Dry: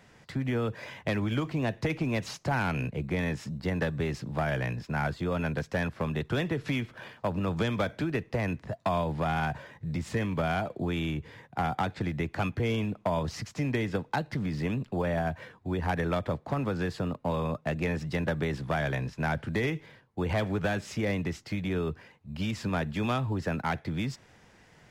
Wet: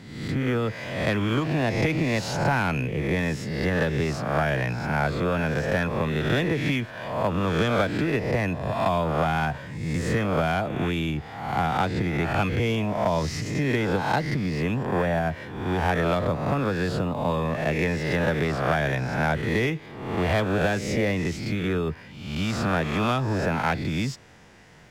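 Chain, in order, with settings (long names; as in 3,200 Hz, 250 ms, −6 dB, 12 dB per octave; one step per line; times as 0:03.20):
peak hold with a rise ahead of every peak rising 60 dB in 0.94 s
level +3.5 dB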